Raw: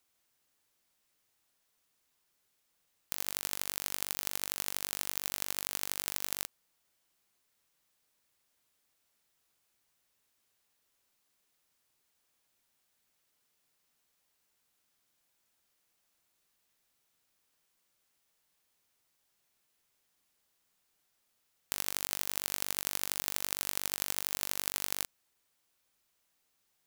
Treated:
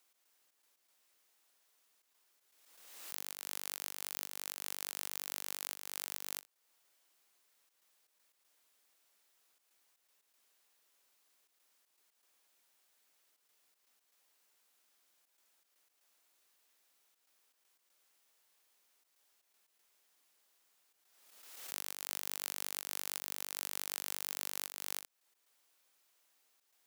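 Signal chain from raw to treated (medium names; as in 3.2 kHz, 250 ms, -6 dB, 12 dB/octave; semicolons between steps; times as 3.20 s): high-pass 340 Hz 12 dB/octave; slow attack 320 ms; trance gate "x.xx.x.xxxxxxxx" 119 bpm -12 dB; swell ahead of each attack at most 43 dB/s; trim +3 dB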